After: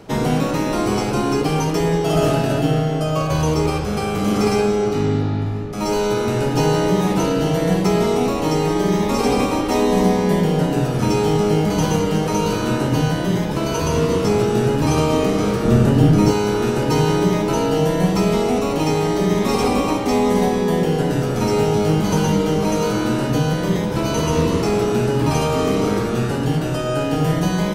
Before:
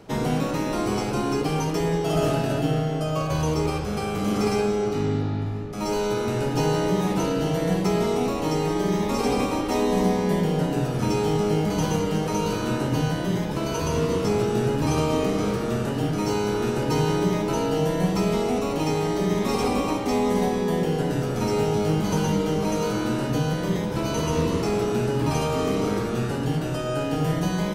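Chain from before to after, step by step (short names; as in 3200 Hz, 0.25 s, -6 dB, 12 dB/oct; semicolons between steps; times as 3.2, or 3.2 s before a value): 15.65–16.31 low shelf 320 Hz +10 dB; gain +5.5 dB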